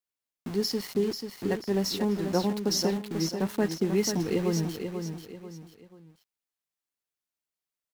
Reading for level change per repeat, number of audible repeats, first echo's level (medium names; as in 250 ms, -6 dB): -9.0 dB, 3, -7.0 dB